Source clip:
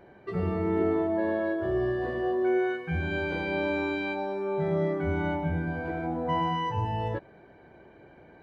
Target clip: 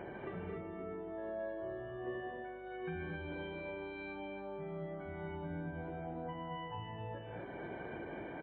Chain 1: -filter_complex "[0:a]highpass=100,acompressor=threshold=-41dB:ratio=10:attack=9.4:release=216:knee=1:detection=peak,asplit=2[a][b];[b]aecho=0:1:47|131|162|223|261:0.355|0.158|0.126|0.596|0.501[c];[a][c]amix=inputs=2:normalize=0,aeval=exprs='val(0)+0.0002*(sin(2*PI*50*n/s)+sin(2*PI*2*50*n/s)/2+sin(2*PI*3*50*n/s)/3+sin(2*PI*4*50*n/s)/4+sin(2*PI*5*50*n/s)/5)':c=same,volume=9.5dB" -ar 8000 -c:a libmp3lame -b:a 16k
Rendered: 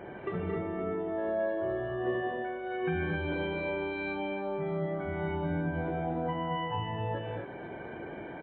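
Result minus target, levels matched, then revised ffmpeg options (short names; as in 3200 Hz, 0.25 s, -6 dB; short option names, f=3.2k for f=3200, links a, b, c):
compressor: peak gain reduction -10.5 dB
-filter_complex "[0:a]highpass=100,acompressor=threshold=-52.5dB:ratio=10:attack=9.4:release=216:knee=1:detection=peak,asplit=2[a][b];[b]aecho=0:1:47|131|162|223|261:0.355|0.158|0.126|0.596|0.501[c];[a][c]amix=inputs=2:normalize=0,aeval=exprs='val(0)+0.0002*(sin(2*PI*50*n/s)+sin(2*PI*2*50*n/s)/2+sin(2*PI*3*50*n/s)/3+sin(2*PI*4*50*n/s)/4+sin(2*PI*5*50*n/s)/5)':c=same,volume=9.5dB" -ar 8000 -c:a libmp3lame -b:a 16k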